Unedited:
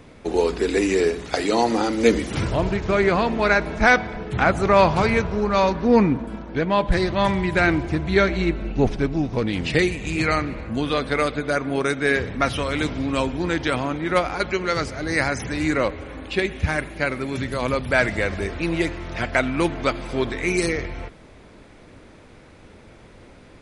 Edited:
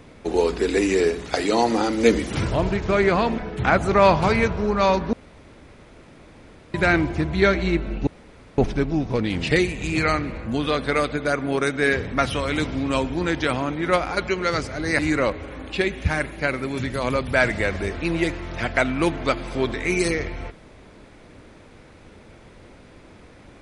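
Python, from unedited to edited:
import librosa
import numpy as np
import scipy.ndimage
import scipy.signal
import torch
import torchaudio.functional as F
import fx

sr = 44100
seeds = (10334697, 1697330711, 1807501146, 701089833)

y = fx.edit(x, sr, fx.cut(start_s=3.38, length_s=0.74),
    fx.room_tone_fill(start_s=5.87, length_s=1.61),
    fx.insert_room_tone(at_s=8.81, length_s=0.51),
    fx.cut(start_s=15.22, length_s=0.35), tone=tone)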